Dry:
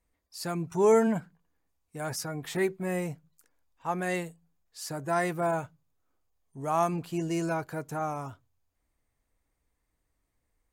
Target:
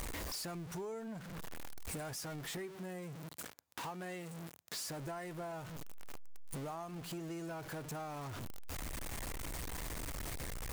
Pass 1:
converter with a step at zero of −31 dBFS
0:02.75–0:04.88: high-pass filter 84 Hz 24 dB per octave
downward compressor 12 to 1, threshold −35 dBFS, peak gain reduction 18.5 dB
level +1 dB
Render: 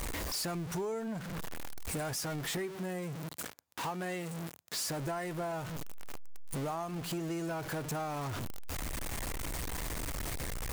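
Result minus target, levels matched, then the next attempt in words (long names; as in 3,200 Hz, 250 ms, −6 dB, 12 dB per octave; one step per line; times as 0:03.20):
downward compressor: peak gain reduction −7 dB
converter with a step at zero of −31 dBFS
0:02.75–0:04.88: high-pass filter 84 Hz 24 dB per octave
downward compressor 12 to 1, threshold −42.5 dBFS, peak gain reduction 25.5 dB
level +1 dB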